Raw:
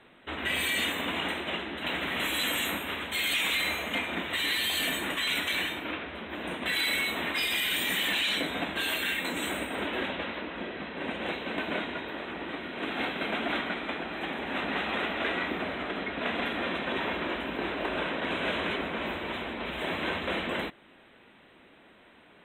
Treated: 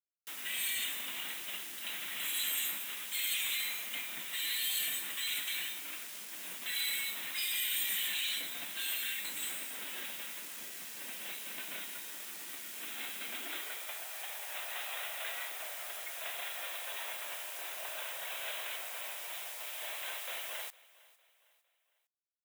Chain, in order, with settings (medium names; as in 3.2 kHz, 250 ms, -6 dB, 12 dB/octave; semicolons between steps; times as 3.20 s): high-pass sweep 160 Hz -> 630 Hz, 13.11–13.91 s; bit crusher 7-bit; pre-emphasis filter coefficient 0.97; feedback delay 456 ms, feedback 41%, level -22 dB